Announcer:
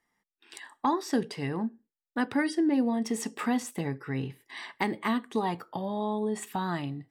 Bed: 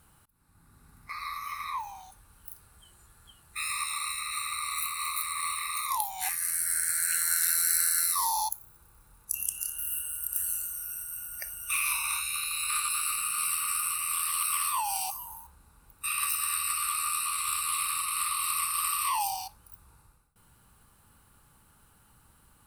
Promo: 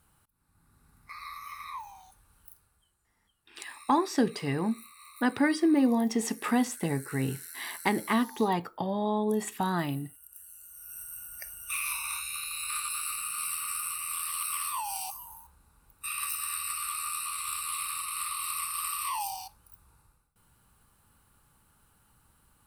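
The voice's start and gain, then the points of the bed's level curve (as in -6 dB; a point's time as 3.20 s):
3.05 s, +2.0 dB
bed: 2.41 s -5.5 dB
3.01 s -19 dB
10.53 s -19 dB
11.00 s -4 dB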